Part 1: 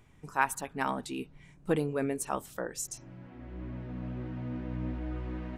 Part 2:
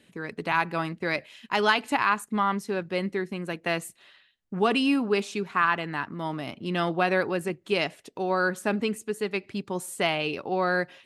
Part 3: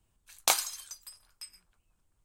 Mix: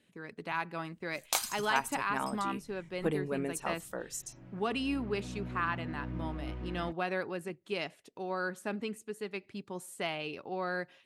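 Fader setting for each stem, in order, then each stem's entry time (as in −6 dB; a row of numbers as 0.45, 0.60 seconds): −3.5, −10.0, −5.5 decibels; 1.35, 0.00, 0.85 seconds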